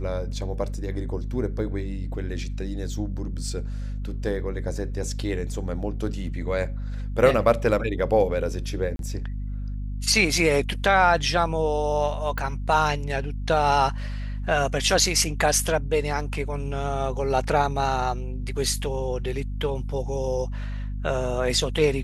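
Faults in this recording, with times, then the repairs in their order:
hum 50 Hz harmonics 5 -30 dBFS
8.96–8.99 gap 32 ms
12.38 pop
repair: de-click; de-hum 50 Hz, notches 5; interpolate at 8.96, 32 ms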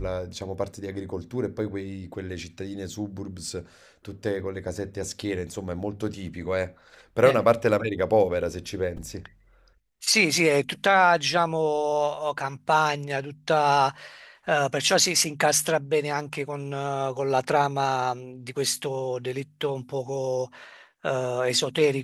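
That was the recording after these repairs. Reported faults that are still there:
12.38 pop

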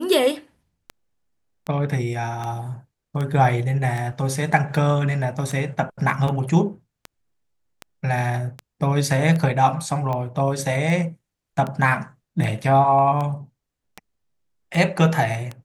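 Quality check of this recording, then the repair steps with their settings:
tick 78 rpm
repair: de-click

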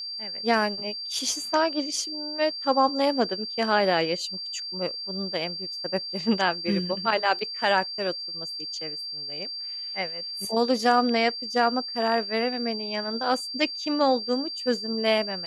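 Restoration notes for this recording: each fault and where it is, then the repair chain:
tone 4700 Hz -32 dBFS
7.39 gap 3.3 ms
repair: notch 4700 Hz, Q 30; interpolate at 7.39, 3.3 ms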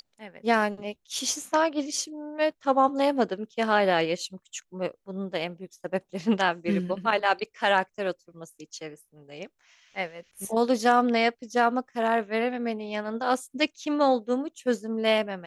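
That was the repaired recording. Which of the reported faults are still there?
none

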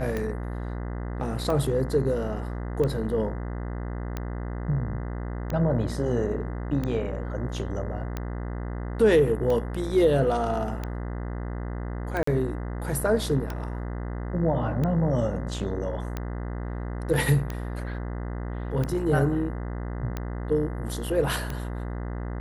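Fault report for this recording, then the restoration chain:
buzz 60 Hz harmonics 34 -32 dBFS
tick 45 rpm -17 dBFS
12.23–12.27 gap 44 ms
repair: de-click; de-hum 60 Hz, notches 34; interpolate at 12.23, 44 ms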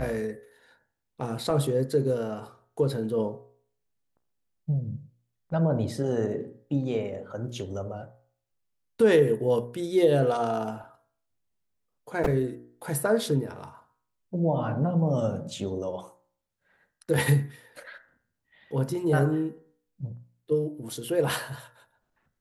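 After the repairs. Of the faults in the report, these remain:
none

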